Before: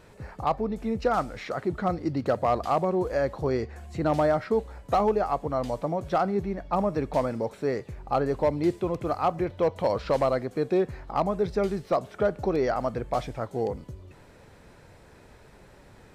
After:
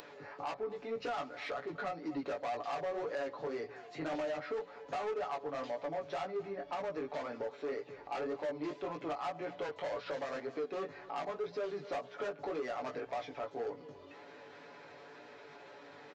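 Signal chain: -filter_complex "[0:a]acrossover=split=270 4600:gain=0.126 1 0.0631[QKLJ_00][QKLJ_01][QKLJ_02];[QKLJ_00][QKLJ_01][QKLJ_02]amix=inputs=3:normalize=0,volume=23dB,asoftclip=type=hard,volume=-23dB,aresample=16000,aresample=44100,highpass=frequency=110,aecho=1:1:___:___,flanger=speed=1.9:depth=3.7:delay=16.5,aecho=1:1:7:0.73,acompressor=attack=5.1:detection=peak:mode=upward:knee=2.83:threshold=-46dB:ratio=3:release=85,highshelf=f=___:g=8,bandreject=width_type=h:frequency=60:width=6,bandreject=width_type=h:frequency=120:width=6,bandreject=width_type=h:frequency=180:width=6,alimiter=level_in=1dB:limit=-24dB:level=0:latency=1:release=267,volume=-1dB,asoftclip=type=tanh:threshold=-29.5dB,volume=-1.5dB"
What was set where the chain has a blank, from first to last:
244, 0.0708, 5500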